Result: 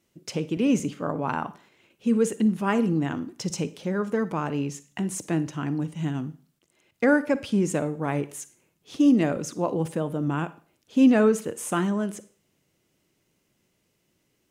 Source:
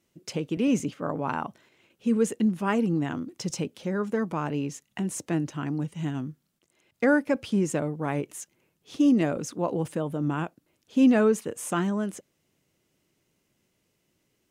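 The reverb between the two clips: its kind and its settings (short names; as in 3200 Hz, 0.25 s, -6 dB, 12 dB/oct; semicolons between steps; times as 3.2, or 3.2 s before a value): Schroeder reverb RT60 0.43 s, DRR 15 dB; gain +1.5 dB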